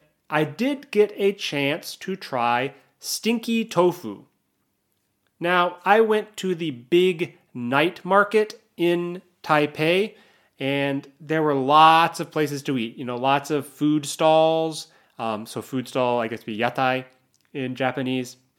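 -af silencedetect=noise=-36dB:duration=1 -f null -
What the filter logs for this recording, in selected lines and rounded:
silence_start: 4.18
silence_end: 5.41 | silence_duration: 1.23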